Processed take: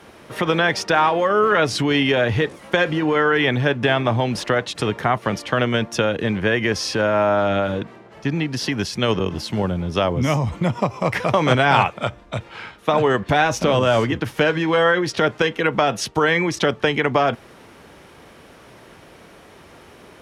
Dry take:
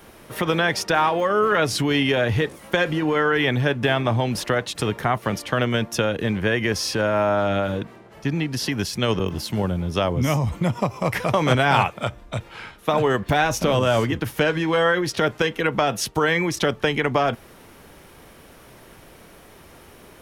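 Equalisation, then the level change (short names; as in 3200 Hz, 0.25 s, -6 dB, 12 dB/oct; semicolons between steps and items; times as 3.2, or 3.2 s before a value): HPF 50 Hz; air absorption 50 m; low shelf 150 Hz -4 dB; +3.0 dB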